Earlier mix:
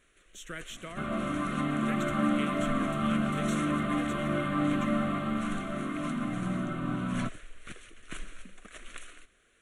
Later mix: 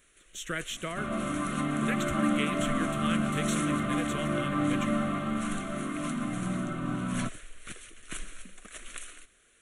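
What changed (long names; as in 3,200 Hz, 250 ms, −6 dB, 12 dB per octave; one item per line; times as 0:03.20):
speech +7.0 dB
first sound: remove low-pass filter 3,200 Hz 6 dB per octave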